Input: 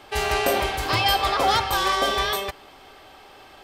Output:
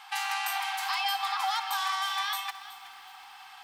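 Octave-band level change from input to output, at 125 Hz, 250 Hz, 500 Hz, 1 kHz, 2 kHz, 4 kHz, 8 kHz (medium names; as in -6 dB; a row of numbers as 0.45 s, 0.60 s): under -40 dB, under -40 dB, under -30 dB, -7.5 dB, -6.5 dB, -7.5 dB, -6.5 dB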